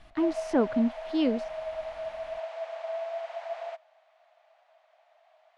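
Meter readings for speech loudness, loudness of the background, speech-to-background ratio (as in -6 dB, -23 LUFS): -28.5 LUFS, -37.0 LUFS, 8.5 dB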